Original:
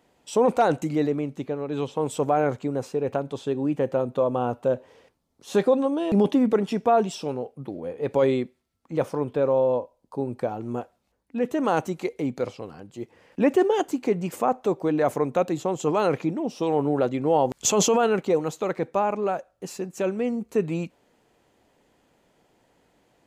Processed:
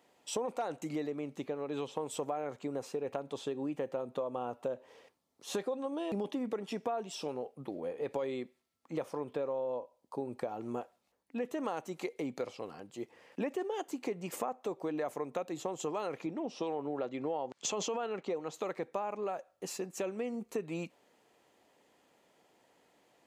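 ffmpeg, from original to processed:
-filter_complex "[0:a]asettb=1/sr,asplit=3[a][b][c];[a]atrim=end=16.264[d];[b]atrim=start=16.26:end=18.54,asetpts=PTS-STARTPTS,afade=t=in:d=0.004:c=qsin,afade=t=out:st=2.276:d=0.004:c=qsin,highpass=100,lowpass=5.5k[e];[c]atrim=start=18.536[f];[d][e]acrossfade=d=0.004:c1=hsin:c2=qsin[g];[g][f]acrossfade=d=0.004:c1=qsin:c2=hsin,highpass=f=380:p=1,bandreject=f=1.5k:w=18,acompressor=threshold=-31dB:ratio=6,volume=-2dB"

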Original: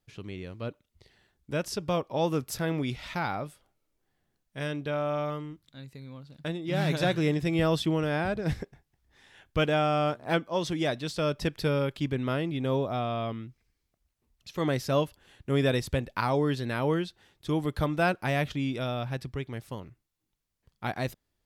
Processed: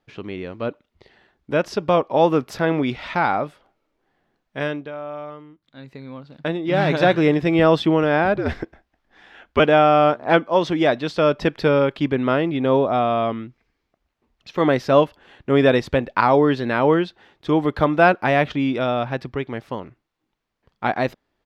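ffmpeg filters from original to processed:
-filter_complex "[0:a]asettb=1/sr,asplit=3[a][b][c];[a]atrim=end=8.374[d];[b]atrim=start=8.37:end=9.6,asetpts=PTS-STARTPTS,afade=t=in:d=0.004:c=qsin,afade=t=out:st=1.226:d=0.004:c=qsin,afreqshift=-70[e];[c]atrim=start=9.596[f];[d][e]acrossfade=d=0.004:c1=hsin:c2=qsin[g];[g][f]acrossfade=d=0.004:c1=qsin:c2=hsin,asplit=3[h][i][j];[h]atrim=end=4.91,asetpts=PTS-STARTPTS,afade=t=out:st=4.61:d=0.3:silence=0.211349[k];[i]atrim=start=4.91:end=5.61,asetpts=PTS-STARTPTS,volume=-13.5dB[l];[j]atrim=start=5.61,asetpts=PTS-STARTPTS,afade=t=in:d=0.3:silence=0.211349[m];[k][l][m]concat=n=3:v=0:a=1,firequalizer=gain_entry='entry(100,0);entry(240,9);entry(790,12);entry(8900,-10)':delay=0.05:min_phase=1,volume=1dB"

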